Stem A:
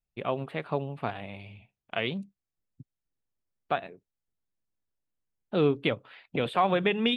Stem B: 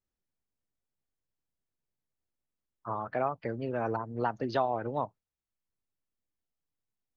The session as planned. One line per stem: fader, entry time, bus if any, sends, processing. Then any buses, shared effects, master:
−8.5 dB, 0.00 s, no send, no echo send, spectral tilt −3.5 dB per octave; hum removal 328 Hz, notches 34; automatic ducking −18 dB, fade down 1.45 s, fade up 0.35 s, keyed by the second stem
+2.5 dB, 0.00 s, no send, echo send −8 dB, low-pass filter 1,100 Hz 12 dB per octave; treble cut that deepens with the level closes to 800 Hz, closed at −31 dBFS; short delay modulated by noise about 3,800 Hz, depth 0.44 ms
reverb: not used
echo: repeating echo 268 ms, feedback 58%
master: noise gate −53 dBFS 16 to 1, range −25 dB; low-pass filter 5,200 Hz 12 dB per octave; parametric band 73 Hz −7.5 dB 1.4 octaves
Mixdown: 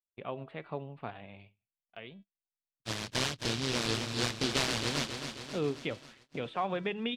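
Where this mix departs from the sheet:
stem A: missing spectral tilt −3.5 dB per octave
master: missing parametric band 73 Hz −7.5 dB 1.4 octaves

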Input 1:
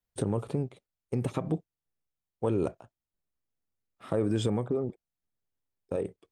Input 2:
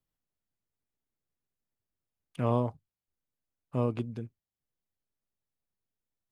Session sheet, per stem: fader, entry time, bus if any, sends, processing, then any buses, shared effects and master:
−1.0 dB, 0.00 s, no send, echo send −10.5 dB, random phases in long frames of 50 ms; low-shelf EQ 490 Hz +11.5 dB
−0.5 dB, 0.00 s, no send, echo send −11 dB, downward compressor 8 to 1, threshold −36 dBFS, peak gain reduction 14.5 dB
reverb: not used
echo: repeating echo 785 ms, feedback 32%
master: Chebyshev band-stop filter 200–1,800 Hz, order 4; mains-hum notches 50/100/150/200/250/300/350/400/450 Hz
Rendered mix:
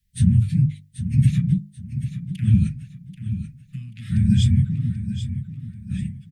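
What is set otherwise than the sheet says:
stem 1 −1.0 dB → +7.5 dB
stem 2 −0.5 dB → +10.0 dB

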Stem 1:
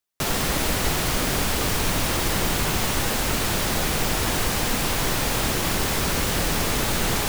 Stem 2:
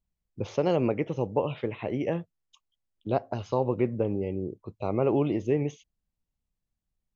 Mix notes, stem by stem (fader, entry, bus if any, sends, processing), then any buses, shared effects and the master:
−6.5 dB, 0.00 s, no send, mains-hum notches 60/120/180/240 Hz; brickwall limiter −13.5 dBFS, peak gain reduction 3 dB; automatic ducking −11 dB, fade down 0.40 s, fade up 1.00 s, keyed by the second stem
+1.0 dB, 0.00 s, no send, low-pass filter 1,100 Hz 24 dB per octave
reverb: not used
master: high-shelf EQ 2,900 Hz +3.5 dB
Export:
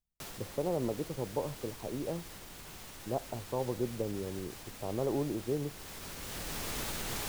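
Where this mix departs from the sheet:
stem 1 −6.5 dB → −14.5 dB
stem 2 +1.0 dB → −8.0 dB

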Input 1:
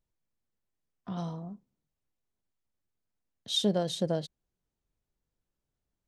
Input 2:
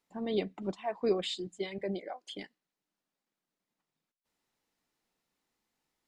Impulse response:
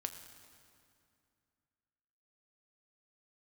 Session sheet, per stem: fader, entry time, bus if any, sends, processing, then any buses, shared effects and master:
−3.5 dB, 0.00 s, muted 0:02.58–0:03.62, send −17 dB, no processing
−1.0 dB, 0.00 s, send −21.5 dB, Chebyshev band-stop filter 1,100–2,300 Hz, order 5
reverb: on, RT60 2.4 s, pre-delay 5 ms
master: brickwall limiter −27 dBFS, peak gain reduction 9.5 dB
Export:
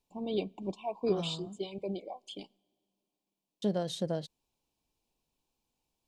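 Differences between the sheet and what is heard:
stem 1: send off
master: missing brickwall limiter −27 dBFS, peak gain reduction 9.5 dB

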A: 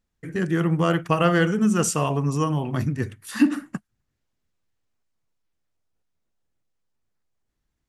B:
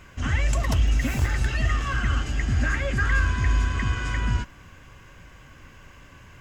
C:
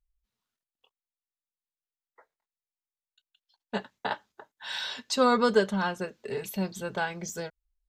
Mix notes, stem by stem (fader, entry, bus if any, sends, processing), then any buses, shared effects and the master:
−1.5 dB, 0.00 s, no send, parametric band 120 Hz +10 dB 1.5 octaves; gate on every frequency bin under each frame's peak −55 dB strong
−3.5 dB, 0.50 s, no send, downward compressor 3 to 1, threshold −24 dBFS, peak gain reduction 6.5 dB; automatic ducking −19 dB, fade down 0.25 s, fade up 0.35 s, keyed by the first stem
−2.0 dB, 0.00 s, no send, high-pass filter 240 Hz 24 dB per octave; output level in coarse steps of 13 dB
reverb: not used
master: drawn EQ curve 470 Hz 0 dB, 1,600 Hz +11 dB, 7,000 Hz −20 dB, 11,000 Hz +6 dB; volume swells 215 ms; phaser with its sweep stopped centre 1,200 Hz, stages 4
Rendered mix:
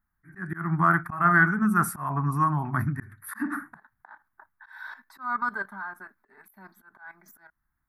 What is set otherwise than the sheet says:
stem A: missing parametric band 120 Hz +10 dB 1.5 octaves
stem B: muted

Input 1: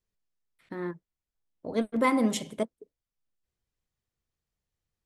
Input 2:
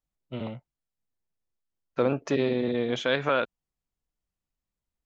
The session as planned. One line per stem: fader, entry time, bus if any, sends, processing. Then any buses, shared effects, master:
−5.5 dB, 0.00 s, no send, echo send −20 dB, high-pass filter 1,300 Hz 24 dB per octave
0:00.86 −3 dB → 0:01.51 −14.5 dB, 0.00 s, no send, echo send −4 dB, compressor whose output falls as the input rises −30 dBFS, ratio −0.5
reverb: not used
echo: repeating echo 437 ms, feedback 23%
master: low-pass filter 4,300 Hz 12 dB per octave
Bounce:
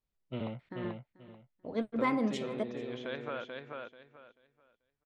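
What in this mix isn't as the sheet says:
stem 1: missing high-pass filter 1,300 Hz 24 dB per octave
stem 2: missing compressor whose output falls as the input rises −30 dBFS, ratio −0.5

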